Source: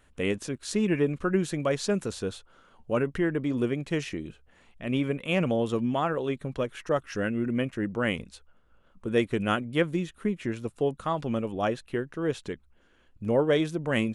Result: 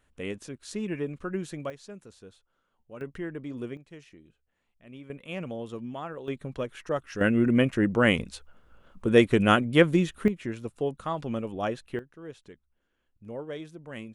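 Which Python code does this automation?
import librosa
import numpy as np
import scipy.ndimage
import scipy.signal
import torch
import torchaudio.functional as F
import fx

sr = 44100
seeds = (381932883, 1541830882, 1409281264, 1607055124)

y = fx.gain(x, sr, db=fx.steps((0.0, -7.0), (1.7, -17.5), (3.01, -9.0), (3.77, -18.5), (5.1, -10.0), (6.28, -3.0), (7.21, 6.0), (10.28, -2.5), (11.99, -14.0)))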